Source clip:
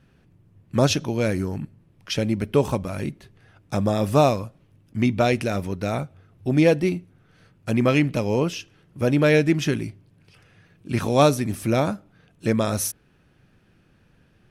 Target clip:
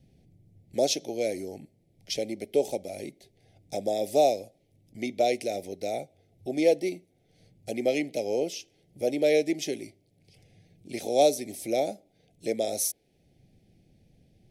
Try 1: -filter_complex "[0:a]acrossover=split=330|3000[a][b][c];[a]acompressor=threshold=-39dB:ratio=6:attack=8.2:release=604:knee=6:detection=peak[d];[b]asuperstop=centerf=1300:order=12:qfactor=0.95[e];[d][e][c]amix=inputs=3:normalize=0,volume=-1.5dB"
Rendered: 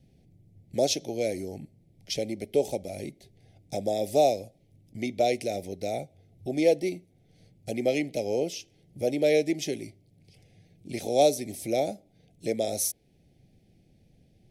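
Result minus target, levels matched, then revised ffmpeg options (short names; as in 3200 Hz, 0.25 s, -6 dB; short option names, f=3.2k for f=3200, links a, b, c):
compressor: peak gain reduction -8.5 dB
-filter_complex "[0:a]acrossover=split=330|3000[a][b][c];[a]acompressor=threshold=-49dB:ratio=6:attack=8.2:release=604:knee=6:detection=peak[d];[b]asuperstop=centerf=1300:order=12:qfactor=0.95[e];[d][e][c]amix=inputs=3:normalize=0,volume=-1.5dB"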